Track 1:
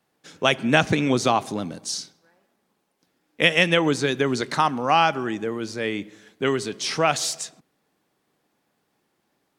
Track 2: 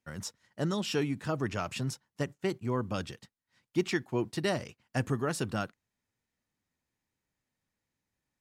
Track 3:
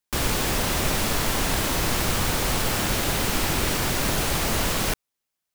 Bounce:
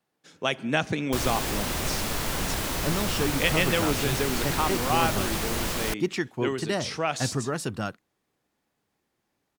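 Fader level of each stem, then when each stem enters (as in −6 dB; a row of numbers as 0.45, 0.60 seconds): −7.0, +2.0, −5.0 decibels; 0.00, 2.25, 1.00 seconds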